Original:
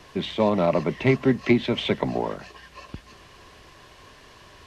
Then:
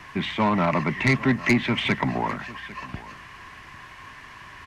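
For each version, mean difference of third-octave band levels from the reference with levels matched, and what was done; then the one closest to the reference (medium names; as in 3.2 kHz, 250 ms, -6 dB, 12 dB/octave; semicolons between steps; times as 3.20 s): 4.0 dB: ten-band graphic EQ 125 Hz +4 dB, 250 Hz +3 dB, 500 Hz -9 dB, 1 kHz +7 dB, 2 kHz +11 dB, 4 kHz -4 dB; saturation -13 dBFS, distortion -12 dB; on a send: delay 799 ms -18.5 dB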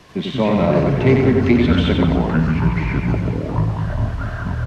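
8.0 dB: peaking EQ 180 Hz +5 dB 1.3 oct; feedback delay 92 ms, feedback 54%, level -4 dB; ever faster or slower copies 103 ms, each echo -7 st, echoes 3; trim +1 dB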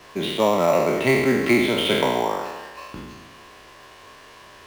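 6.0 dB: spectral sustain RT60 1.26 s; in parallel at -7.5 dB: sample-rate reducer 6.5 kHz, jitter 0%; on the sum: bass shelf 240 Hz -11.5 dB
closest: first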